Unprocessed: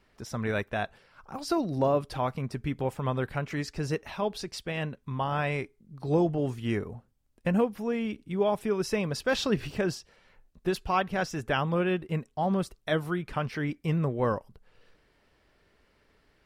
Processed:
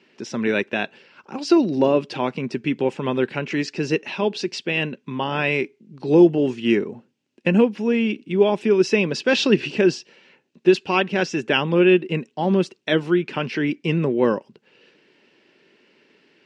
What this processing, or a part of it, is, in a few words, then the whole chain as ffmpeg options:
television speaker: -af "highpass=f=170:w=0.5412,highpass=f=170:w=1.3066,equalizer=f=240:t=q:w=4:g=3,equalizer=f=360:t=q:w=4:g=7,equalizer=f=700:t=q:w=4:g=-7,equalizer=f=1200:t=q:w=4:g=-8,equalizer=f=2700:t=q:w=4:g=9,lowpass=f=6700:w=0.5412,lowpass=f=6700:w=1.3066,volume=2.51"

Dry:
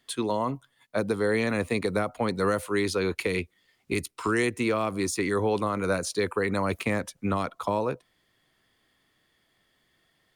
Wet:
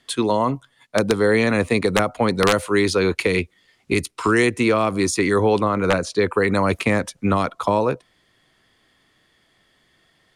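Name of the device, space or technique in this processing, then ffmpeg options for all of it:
overflowing digital effects unit: -filter_complex "[0:a]aeval=exprs='(mod(5.31*val(0)+1,2)-1)/5.31':c=same,lowpass=10000,asettb=1/sr,asplit=3[s0][s1][s2];[s0]atrim=end=5.594[s3];[s1]atrim=start=5.59:end=6.33,asetpts=PTS-STARTPTS,afade=t=in:d=0.004:c=qsin,afade=t=out:st=0.736:d=0.004:c=qsin,aemphasis=mode=reproduction:type=50kf[s4];[s2]atrim=start=6.326[s5];[s3][s4]acrossfade=d=0.004:c1=hsin:c2=qsin[s6];[s6][s5]acrossfade=d=0.004:c1=qsin:c2=hsin,volume=2.51"

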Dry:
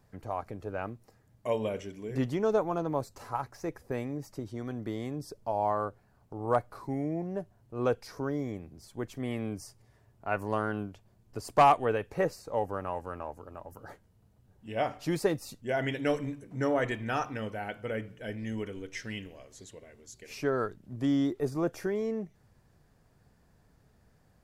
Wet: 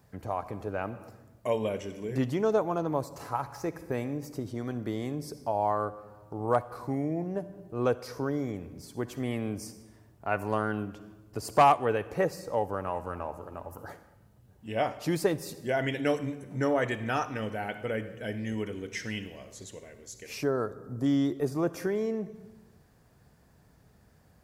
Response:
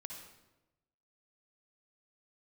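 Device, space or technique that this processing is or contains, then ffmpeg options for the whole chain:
compressed reverb return: -filter_complex "[0:a]asplit=2[s0][s1];[1:a]atrim=start_sample=2205[s2];[s1][s2]afir=irnorm=-1:irlink=0,acompressor=threshold=0.01:ratio=6,volume=1[s3];[s0][s3]amix=inputs=2:normalize=0,highpass=42,highshelf=f=12000:g=5.5,asettb=1/sr,asplit=3[s4][s5][s6];[s4]atrim=end=20.434[s7];[s5]atrim=start=20.43:end=21.06,asetpts=PTS-STARTPTS,afade=t=in:d=0.004:c=qsin,afade=t=out:st=0.626:d=0.004:c=qsin,equalizer=f=2600:w=1.2:g=-13.5[s8];[s6]atrim=start=21.056[s9];[s7][s8]acrossfade=d=0.004:c1=hsin:c2=qsin[s10];[s10][s9]acrossfade=d=0.004:c1=qsin:c2=hsin"

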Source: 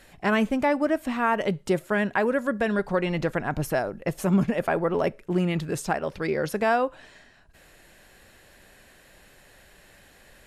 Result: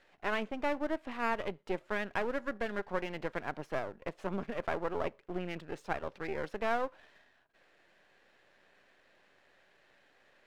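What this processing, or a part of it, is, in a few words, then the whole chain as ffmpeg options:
crystal radio: -af "highpass=310,lowpass=3100,aeval=exprs='if(lt(val(0),0),0.251*val(0),val(0))':c=same,volume=0.473"

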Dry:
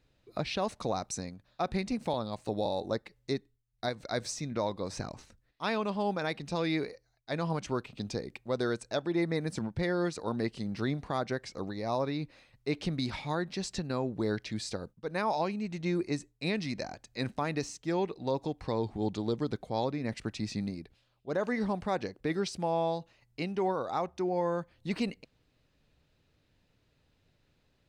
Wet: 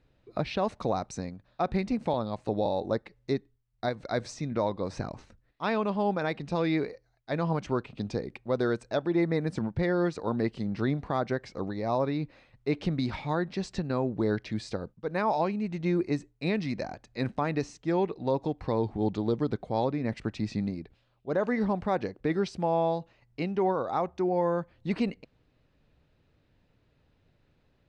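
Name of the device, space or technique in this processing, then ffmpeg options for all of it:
through cloth: -af "lowpass=8800,highshelf=f=3600:g=-12.5,volume=1.58"

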